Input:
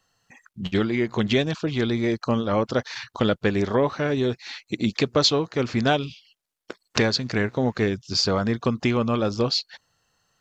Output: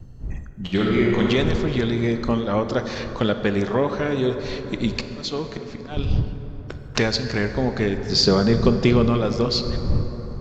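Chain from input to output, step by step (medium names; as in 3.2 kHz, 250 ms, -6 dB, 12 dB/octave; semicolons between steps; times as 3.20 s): wind noise 88 Hz -30 dBFS; 0.60–1.21 s: reverb throw, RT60 2.4 s, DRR -2 dB; 4.84–5.97 s: slow attack 369 ms; 8.09–9.10 s: fifteen-band graphic EQ 160 Hz +11 dB, 400 Hz +8 dB, 4 kHz +6 dB; plate-style reverb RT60 4.8 s, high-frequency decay 0.4×, pre-delay 0 ms, DRR 7.5 dB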